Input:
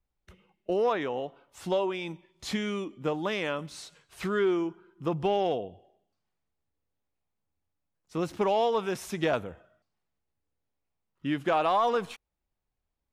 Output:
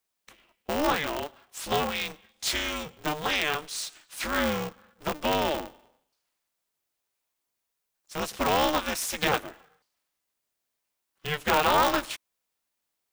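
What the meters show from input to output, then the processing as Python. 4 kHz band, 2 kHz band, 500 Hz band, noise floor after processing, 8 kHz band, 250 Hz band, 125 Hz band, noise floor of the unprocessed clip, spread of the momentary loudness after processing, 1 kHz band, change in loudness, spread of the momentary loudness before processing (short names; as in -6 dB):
+9.0 dB, +7.5 dB, -2.0 dB, -82 dBFS, +13.0 dB, -1.0 dB, -0.5 dB, -83 dBFS, 15 LU, +3.0 dB, +2.0 dB, 16 LU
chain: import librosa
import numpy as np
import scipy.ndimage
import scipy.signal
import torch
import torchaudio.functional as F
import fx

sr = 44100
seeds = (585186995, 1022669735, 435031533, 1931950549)

y = fx.highpass(x, sr, hz=940.0, slope=6)
y = fx.high_shelf(y, sr, hz=4000.0, db=7.5)
y = y * np.sign(np.sin(2.0 * np.pi * 150.0 * np.arange(len(y)) / sr))
y = y * 10.0 ** (6.0 / 20.0)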